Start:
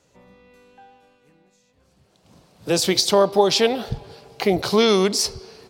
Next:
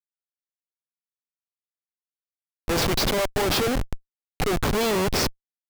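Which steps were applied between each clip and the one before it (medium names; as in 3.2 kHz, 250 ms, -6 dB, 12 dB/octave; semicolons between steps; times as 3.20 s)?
hum notches 60/120/180 Hz; overdrive pedal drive 10 dB, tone 3.4 kHz, clips at -3.5 dBFS; Schmitt trigger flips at -20 dBFS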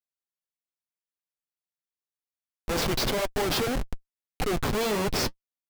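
flange 1.8 Hz, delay 3.5 ms, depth 5.2 ms, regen -44%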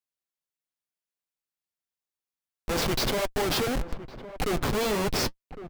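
echo from a far wall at 190 m, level -13 dB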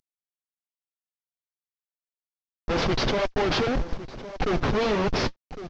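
CVSD coder 32 kbps; trim +3.5 dB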